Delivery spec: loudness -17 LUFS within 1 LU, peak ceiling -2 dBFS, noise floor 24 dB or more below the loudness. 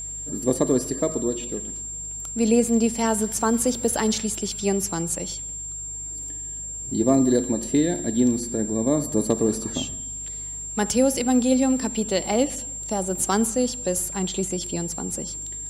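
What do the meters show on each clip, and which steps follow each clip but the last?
hum 50 Hz; harmonics up to 150 Hz; hum level -41 dBFS; steady tone 7400 Hz; tone level -31 dBFS; loudness -24.0 LUFS; peak -7.0 dBFS; loudness target -17.0 LUFS
-> de-hum 50 Hz, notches 3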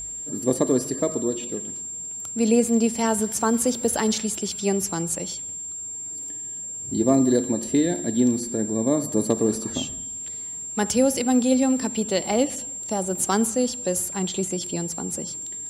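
hum none; steady tone 7400 Hz; tone level -31 dBFS
-> notch 7400 Hz, Q 30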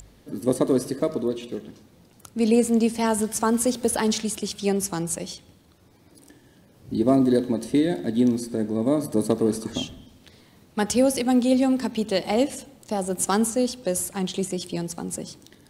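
steady tone none; loudness -24.0 LUFS; peak -7.0 dBFS; loudness target -17.0 LUFS
-> gain +7 dB; limiter -2 dBFS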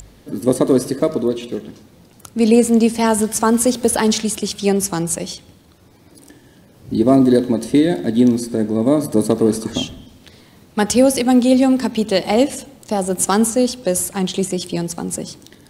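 loudness -17.0 LUFS; peak -2.0 dBFS; noise floor -48 dBFS

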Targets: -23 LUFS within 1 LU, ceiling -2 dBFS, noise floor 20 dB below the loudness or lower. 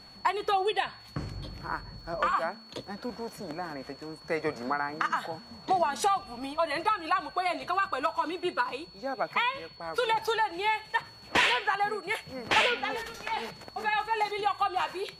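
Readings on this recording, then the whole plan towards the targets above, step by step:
ticks 30/s; steady tone 4400 Hz; tone level -50 dBFS; loudness -30.0 LUFS; peak -12.0 dBFS; loudness target -23.0 LUFS
-> de-click; notch 4400 Hz, Q 30; gain +7 dB

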